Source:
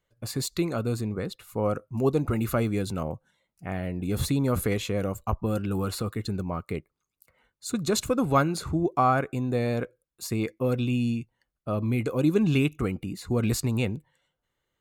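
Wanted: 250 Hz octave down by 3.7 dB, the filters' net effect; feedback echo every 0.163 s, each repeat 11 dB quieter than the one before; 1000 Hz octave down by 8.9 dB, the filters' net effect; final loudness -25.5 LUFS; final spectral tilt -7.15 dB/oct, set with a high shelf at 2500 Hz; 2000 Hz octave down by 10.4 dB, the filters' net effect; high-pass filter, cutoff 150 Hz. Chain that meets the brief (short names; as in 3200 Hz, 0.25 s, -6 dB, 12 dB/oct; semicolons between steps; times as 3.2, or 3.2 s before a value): HPF 150 Hz; bell 250 Hz -3 dB; bell 1000 Hz -9 dB; bell 2000 Hz -8.5 dB; high shelf 2500 Hz -5.5 dB; feedback echo 0.163 s, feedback 28%, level -11 dB; gain +6.5 dB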